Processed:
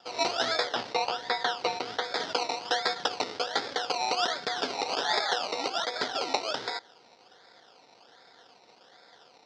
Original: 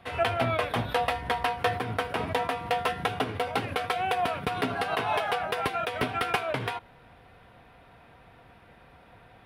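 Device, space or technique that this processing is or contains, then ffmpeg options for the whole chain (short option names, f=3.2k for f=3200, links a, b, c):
circuit-bent sampling toy: -filter_complex "[0:a]acrusher=samples=21:mix=1:aa=0.000001:lfo=1:lforange=12.6:lforate=1.3,highpass=520,equalizer=f=640:t=q:w=4:g=-5,equalizer=f=1.1k:t=q:w=4:g=-9,equalizer=f=2.5k:t=q:w=4:g=-6,equalizer=f=3.6k:t=q:w=4:g=4,equalizer=f=5.1k:t=q:w=4:g=9,lowpass=f=5.3k:w=0.5412,lowpass=f=5.3k:w=1.3066,asettb=1/sr,asplit=3[a][b][c];[a]atrim=end=0.674[d];[b]atrim=start=0.67:end=2.04,asetpts=PTS-STARTPTS,afade=t=in:d=0.004:c=qsin,afade=t=out:st=1.366:d=0.004:c=qsin,acrossover=split=4600[e][f];[f]acompressor=threshold=-49dB:ratio=4:attack=1:release=60[g];[e][g]amix=inputs=2:normalize=0[h];[c]atrim=start=2.036[i];[d][h]acrossfade=d=0.004:c1=hsin:c2=qsin[j];[j][i]acrossfade=d=0.004:c1=qsin:c2=hsin,volume=3dB"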